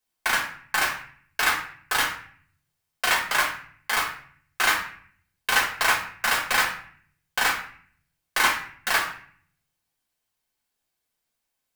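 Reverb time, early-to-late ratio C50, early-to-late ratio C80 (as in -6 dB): 0.50 s, 7.0 dB, 11.0 dB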